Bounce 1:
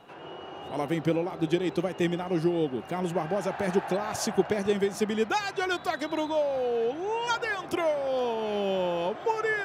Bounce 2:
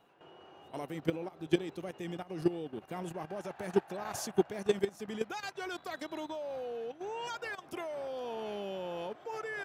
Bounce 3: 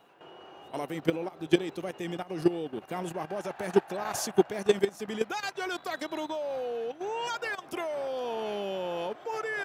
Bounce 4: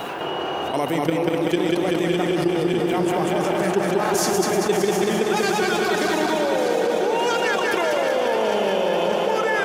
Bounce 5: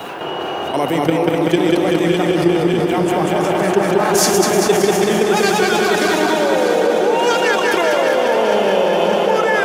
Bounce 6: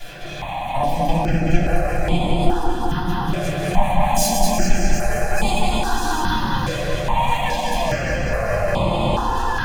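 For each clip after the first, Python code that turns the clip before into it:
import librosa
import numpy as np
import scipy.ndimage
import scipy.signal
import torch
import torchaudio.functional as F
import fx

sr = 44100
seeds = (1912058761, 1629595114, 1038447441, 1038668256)

y1 = fx.high_shelf(x, sr, hz=9900.0, db=10.0)
y1 = fx.level_steps(y1, sr, step_db=11)
y1 = fx.upward_expand(y1, sr, threshold_db=-44.0, expansion=1.5)
y2 = fx.low_shelf(y1, sr, hz=160.0, db=-7.5)
y2 = y2 * 10.0 ** (6.5 / 20.0)
y3 = fx.reverse_delay_fb(y2, sr, ms=304, feedback_pct=84, wet_db=-8.5)
y3 = fx.echo_feedback(y3, sr, ms=191, feedback_pct=58, wet_db=-4)
y3 = fx.env_flatten(y3, sr, amount_pct=70)
y4 = y3 + 10.0 ** (-9.0 / 20.0) * np.pad(y3, (int(407 * sr / 1000.0), 0))[:len(y3)]
y4 = fx.band_widen(y4, sr, depth_pct=40)
y4 = y4 * 10.0 ** (5.5 / 20.0)
y5 = fx.lower_of_two(y4, sr, delay_ms=1.2)
y5 = fx.room_shoebox(y5, sr, seeds[0], volume_m3=120.0, walls='furnished', distance_m=3.1)
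y5 = fx.phaser_held(y5, sr, hz=2.4, low_hz=240.0, high_hz=5700.0)
y5 = y5 * 10.0 ** (-9.0 / 20.0)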